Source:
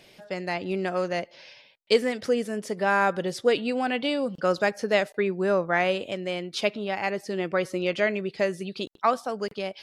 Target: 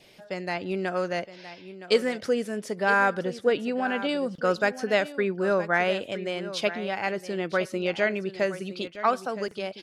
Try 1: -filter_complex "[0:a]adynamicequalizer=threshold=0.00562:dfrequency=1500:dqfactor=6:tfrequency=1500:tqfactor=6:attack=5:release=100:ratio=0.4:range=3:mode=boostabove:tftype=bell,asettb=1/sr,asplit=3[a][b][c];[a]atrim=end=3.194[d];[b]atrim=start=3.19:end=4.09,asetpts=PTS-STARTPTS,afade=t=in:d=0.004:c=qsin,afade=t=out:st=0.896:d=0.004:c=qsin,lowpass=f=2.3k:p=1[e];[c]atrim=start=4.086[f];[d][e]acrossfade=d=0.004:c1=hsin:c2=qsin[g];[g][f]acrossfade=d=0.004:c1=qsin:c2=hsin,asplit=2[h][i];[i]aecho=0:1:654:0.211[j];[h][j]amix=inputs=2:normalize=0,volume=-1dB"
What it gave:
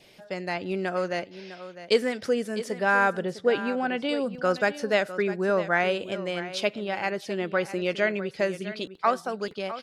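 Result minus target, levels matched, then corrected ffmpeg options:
echo 0.312 s early
-filter_complex "[0:a]adynamicequalizer=threshold=0.00562:dfrequency=1500:dqfactor=6:tfrequency=1500:tqfactor=6:attack=5:release=100:ratio=0.4:range=3:mode=boostabove:tftype=bell,asettb=1/sr,asplit=3[a][b][c];[a]atrim=end=3.194[d];[b]atrim=start=3.19:end=4.09,asetpts=PTS-STARTPTS,afade=t=in:d=0.004:c=qsin,afade=t=out:st=0.896:d=0.004:c=qsin,lowpass=f=2.3k:p=1[e];[c]atrim=start=4.086[f];[d][e]acrossfade=d=0.004:c1=hsin:c2=qsin[g];[g][f]acrossfade=d=0.004:c1=qsin:c2=hsin,asplit=2[h][i];[i]aecho=0:1:966:0.211[j];[h][j]amix=inputs=2:normalize=0,volume=-1dB"

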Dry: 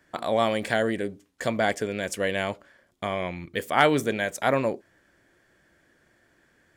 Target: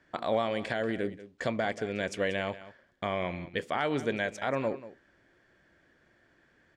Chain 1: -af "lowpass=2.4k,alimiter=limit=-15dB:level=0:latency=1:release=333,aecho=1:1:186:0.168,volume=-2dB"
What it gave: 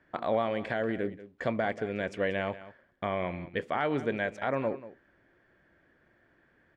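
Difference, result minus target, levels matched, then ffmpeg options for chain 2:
4000 Hz band -5.5 dB
-af "lowpass=4.9k,alimiter=limit=-15dB:level=0:latency=1:release=333,aecho=1:1:186:0.168,volume=-2dB"

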